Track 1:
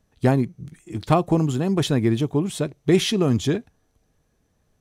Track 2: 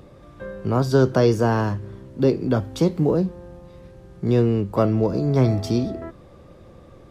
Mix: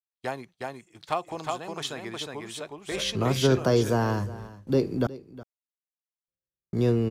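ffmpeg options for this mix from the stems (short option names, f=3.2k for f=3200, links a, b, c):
-filter_complex "[0:a]acrossover=split=530 6400:gain=0.112 1 0.224[a][b][c];[a][b][c]amix=inputs=3:normalize=0,volume=-6dB,asplit=2[d][e];[e]volume=-3dB[f];[1:a]agate=range=-20dB:threshold=-37dB:ratio=16:detection=peak,adelay=2500,volume=-5dB,asplit=3[g][h][i];[g]atrim=end=5.07,asetpts=PTS-STARTPTS,afade=t=out:st=5.066:d=0.004:c=hsin[j];[h]atrim=start=5.07:end=6.28,asetpts=PTS-STARTPTS,volume=0[k];[i]atrim=start=6.28,asetpts=PTS-STARTPTS,afade=t=in:d=0.004:c=hsin[l];[j][k][l]concat=n=3:v=0:a=1,asplit=2[m][n];[n]volume=-17.5dB[o];[f][o]amix=inputs=2:normalize=0,aecho=0:1:363:1[p];[d][m][p]amix=inputs=3:normalize=0,agate=range=-33dB:threshold=-46dB:ratio=3:detection=peak,highshelf=f=7.2k:g=11.5"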